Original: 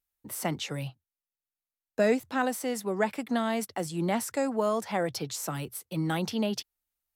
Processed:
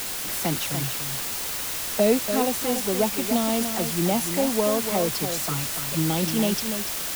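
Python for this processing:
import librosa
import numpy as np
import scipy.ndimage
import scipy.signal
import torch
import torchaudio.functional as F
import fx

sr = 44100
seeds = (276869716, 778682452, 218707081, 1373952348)

p1 = fx.env_flanger(x, sr, rest_ms=11.4, full_db=-27.0)
p2 = fx.dmg_noise_colour(p1, sr, seeds[0], colour='pink', level_db=-56.0)
p3 = fx.quant_dither(p2, sr, seeds[1], bits=6, dither='triangular')
p4 = p3 + fx.echo_single(p3, sr, ms=290, db=-8.0, dry=0)
y = p4 * 10.0 ** (5.5 / 20.0)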